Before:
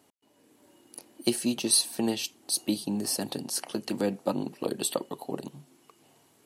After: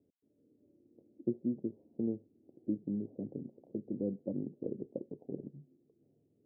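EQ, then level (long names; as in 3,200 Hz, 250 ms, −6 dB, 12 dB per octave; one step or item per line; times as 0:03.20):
Butterworth low-pass 520 Hz 36 dB per octave
low-shelf EQ 170 Hz +6.5 dB
−8.0 dB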